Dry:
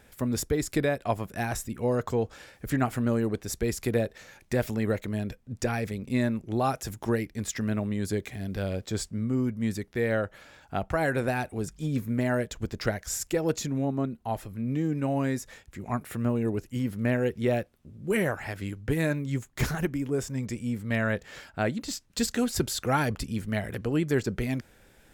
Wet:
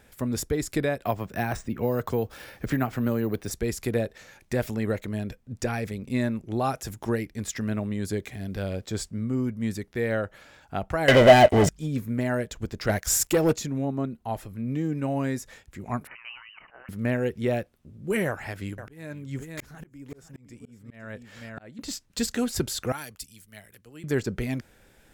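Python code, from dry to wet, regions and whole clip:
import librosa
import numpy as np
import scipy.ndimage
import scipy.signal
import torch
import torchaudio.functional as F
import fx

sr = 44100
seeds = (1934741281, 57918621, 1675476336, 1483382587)

y = fx.chain(x, sr, fx.high_shelf(hz=12000.0, db=-4.5),
    fx.resample_bad(factor=3, down='filtered', up='hold'),
    fx.band_squash(depth_pct=70), at=(1.04, 3.51))
y = fx.chain(y, sr, fx.lowpass(hz=6800.0, slope=12),
    fx.leveller(passes=5),
    fx.small_body(hz=(620.0, 2000.0, 3000.0), ring_ms=25, db=14), at=(11.08, 11.69))
y = fx.chain(y, sr, fx.high_shelf(hz=10000.0, db=6.5),
    fx.leveller(passes=2), at=(12.89, 13.53))
y = fx.chain(y, sr, fx.steep_highpass(hz=720.0, slope=96),
    fx.freq_invert(carrier_hz=3700),
    fx.sustainer(db_per_s=72.0), at=(16.07, 16.89))
y = fx.chain(y, sr, fx.echo_single(ms=509, db=-12.0),
    fx.auto_swell(attack_ms=756.0), at=(18.27, 21.79))
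y = fx.chain(y, sr, fx.pre_emphasis(coefficient=0.9),
    fx.band_widen(depth_pct=70), at=(22.92, 24.04))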